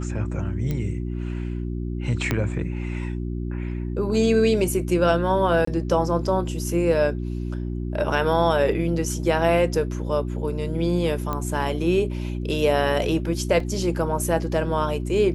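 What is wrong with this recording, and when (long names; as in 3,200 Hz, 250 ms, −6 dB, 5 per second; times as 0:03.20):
mains hum 60 Hz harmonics 6 −28 dBFS
0:00.71: click −15 dBFS
0:02.31: click −8 dBFS
0:05.65–0:05.67: drop-out 24 ms
0:11.33: click −14 dBFS
0:13.60: drop-out 3 ms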